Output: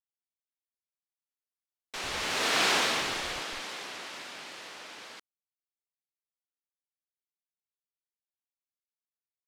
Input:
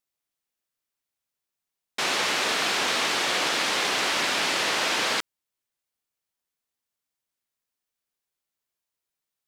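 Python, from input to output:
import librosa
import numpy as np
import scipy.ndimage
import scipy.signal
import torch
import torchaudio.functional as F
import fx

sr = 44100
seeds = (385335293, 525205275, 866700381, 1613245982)

p1 = fx.doppler_pass(x, sr, speed_mps=8, closest_m=1.6, pass_at_s=2.67)
p2 = fx.schmitt(p1, sr, flips_db=-27.0)
p3 = p1 + (p2 * 10.0 ** (-10.0 / 20.0))
y = fx.vibrato(p3, sr, rate_hz=2.2, depth_cents=42.0)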